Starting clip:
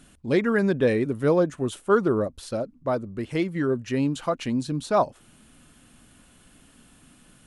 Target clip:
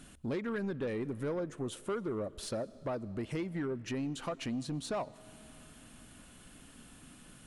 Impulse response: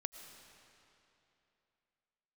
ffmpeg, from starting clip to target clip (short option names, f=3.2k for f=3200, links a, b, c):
-filter_complex "[0:a]acompressor=threshold=-32dB:ratio=4,asoftclip=type=tanh:threshold=-28.5dB,asplit=2[a][b];[1:a]atrim=start_sample=2205[c];[b][c]afir=irnorm=-1:irlink=0,volume=-8.5dB[d];[a][d]amix=inputs=2:normalize=0,volume=-2.5dB"